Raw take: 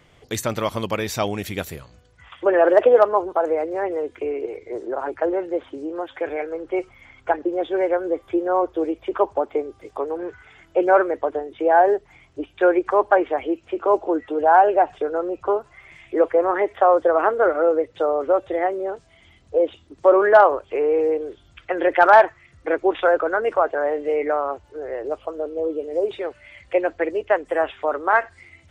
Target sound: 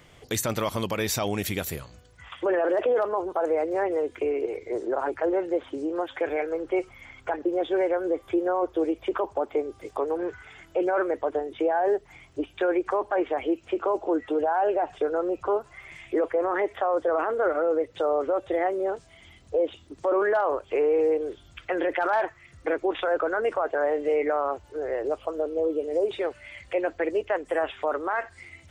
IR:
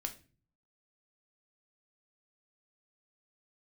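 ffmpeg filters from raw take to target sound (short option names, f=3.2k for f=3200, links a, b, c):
-filter_complex "[0:a]highshelf=f=6.8k:g=7,asplit=2[a][b];[b]acompressor=threshold=-25dB:ratio=6,volume=0.5dB[c];[a][c]amix=inputs=2:normalize=0,alimiter=limit=-11dB:level=0:latency=1:release=13,volume=-5.5dB"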